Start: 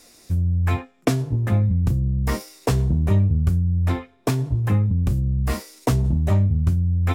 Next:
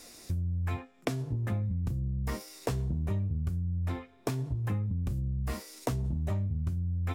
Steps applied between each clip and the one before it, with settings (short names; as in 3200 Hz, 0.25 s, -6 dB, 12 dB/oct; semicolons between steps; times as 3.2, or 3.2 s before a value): compressor 3:1, threshold -33 dBFS, peak gain reduction 14.5 dB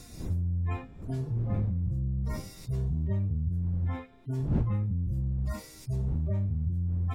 median-filter separation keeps harmonic; wind noise 150 Hz -42 dBFS; gain +2 dB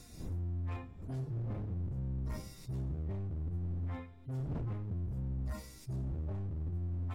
hard clip -29.5 dBFS, distortion -11 dB; on a send at -19.5 dB: reverb RT60 0.90 s, pre-delay 24 ms; on the sum: gain -6 dB